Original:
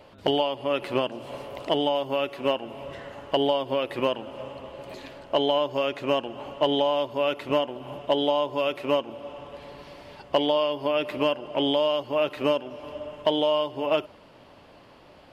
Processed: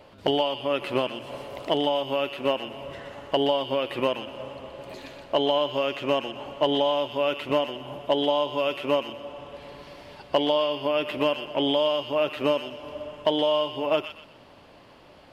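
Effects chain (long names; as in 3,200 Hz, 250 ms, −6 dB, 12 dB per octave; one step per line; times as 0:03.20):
delay with a high-pass on its return 123 ms, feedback 31%, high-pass 1,800 Hz, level −5 dB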